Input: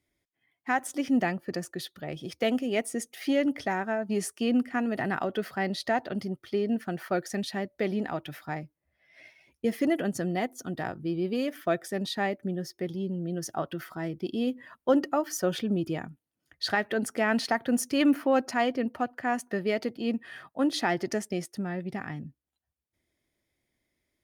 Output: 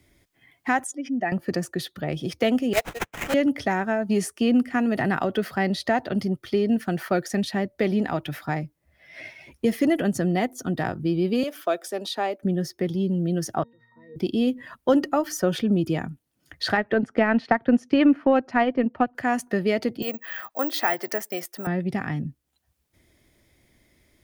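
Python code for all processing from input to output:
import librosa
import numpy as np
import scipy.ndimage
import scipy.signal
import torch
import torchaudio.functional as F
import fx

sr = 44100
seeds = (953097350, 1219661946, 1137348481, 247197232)

y = fx.chain(x, sr, fx.spec_expand(power=1.7),
    fx.highpass(hz=890.0, slope=6),
    fx.peak_eq(hz=6900.0, db=5.5, octaves=0.3), at=(0.84, 1.32))
y = fx.chain(y, sr, fx.highpass(hz=550.0, slope=24),
    fx.transient(attack_db=9, sustain_db=-7),
    fx.sample_hold(seeds[0], rate_hz=4600.0, jitter_pct=20), at=(2.73, 3.34))
y = fx.chain(y, sr, fx.bessel_highpass(hz=480.0, order=4),
    fx.peak_eq(hz=1900.0, db=-10.5, octaves=0.43), at=(11.43, 12.42))
y = fx.chain(y, sr, fx.highpass(hz=170.0, slope=12),
    fx.octave_resonator(note='A#', decay_s=0.53), at=(13.63, 14.16))
y = fx.chain(y, sr, fx.lowpass(hz=2500.0, slope=12),
    fx.transient(attack_db=5, sustain_db=-7), at=(16.77, 19.15))
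y = fx.chain(y, sr, fx.highpass(hz=590.0, slope=12),
    fx.resample_bad(factor=2, down='none', up='zero_stuff'), at=(20.02, 21.67))
y = fx.low_shelf(y, sr, hz=150.0, db=8.0)
y = fx.band_squash(y, sr, depth_pct=40)
y = F.gain(torch.from_numpy(y), 4.0).numpy()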